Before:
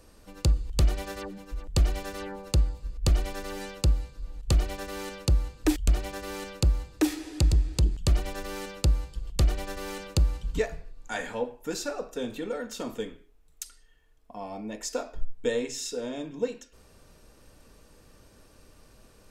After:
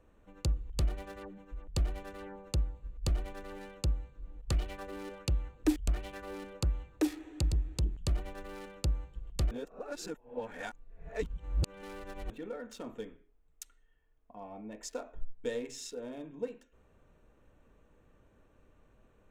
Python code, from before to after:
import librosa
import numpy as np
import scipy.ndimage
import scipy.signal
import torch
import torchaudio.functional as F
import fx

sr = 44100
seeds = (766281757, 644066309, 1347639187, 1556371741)

y = fx.bell_lfo(x, sr, hz=1.4, low_hz=250.0, high_hz=3300.0, db=7, at=(4.17, 7.06), fade=0.02)
y = fx.edit(y, sr, fx.reverse_span(start_s=9.51, length_s=2.79), tone=tone)
y = fx.wiener(y, sr, points=9)
y = y * librosa.db_to_amplitude(-8.0)